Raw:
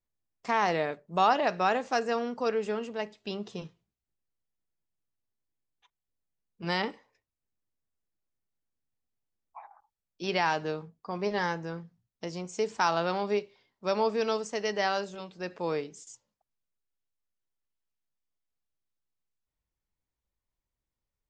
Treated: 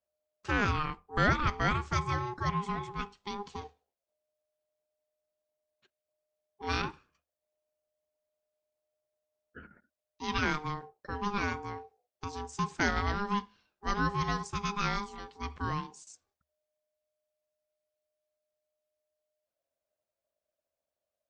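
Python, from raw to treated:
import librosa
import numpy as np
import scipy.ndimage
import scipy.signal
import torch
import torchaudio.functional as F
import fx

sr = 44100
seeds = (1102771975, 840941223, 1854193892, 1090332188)

y = x * np.sin(2.0 * np.pi * 610.0 * np.arange(len(x)) / sr)
y = fx.peak_eq(y, sr, hz=74.0, db=11.0, octaves=0.29)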